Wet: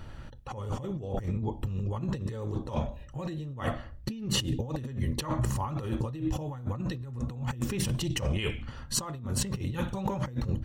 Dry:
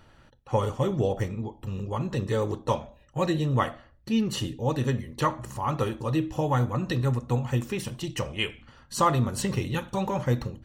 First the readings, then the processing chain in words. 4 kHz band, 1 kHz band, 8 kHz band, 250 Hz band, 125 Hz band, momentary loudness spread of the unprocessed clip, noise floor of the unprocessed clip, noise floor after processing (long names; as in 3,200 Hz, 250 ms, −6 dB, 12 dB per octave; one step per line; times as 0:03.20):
−0.5 dB, −10.0 dB, +2.5 dB, −4.5 dB, −3.5 dB, 7 LU, −58 dBFS, −45 dBFS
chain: low-shelf EQ 180 Hz +10.5 dB
compressor whose output falls as the input rises −31 dBFS, ratio −1
level −2 dB